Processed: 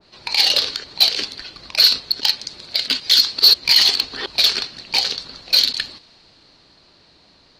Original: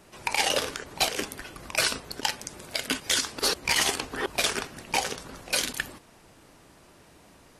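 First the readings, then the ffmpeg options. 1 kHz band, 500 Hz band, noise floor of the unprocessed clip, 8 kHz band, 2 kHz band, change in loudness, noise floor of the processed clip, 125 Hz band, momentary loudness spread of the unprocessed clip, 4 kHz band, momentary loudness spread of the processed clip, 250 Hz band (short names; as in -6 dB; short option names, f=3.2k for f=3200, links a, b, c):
-2.5 dB, -3.0 dB, -56 dBFS, 0.0 dB, +2.5 dB, +12.0 dB, -53 dBFS, n/a, 11 LU, +15.0 dB, 13 LU, -2.5 dB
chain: -af "lowpass=f=4.3k:t=q:w=10,acontrast=81,adynamicequalizer=threshold=0.0501:dfrequency=2000:dqfactor=0.7:tfrequency=2000:tqfactor=0.7:attack=5:release=100:ratio=0.375:range=3.5:mode=boostabove:tftype=highshelf,volume=-9dB"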